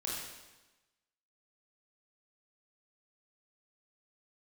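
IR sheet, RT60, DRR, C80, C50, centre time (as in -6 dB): 1.1 s, -5.0 dB, 2.0 dB, 0.0 dB, 78 ms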